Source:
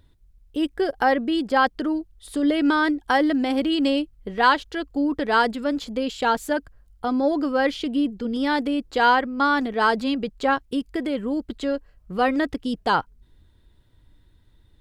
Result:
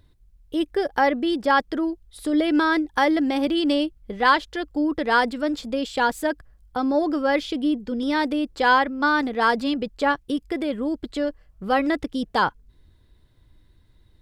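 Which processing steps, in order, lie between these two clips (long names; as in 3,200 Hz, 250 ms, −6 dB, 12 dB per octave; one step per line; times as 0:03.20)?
wrong playback speed 24 fps film run at 25 fps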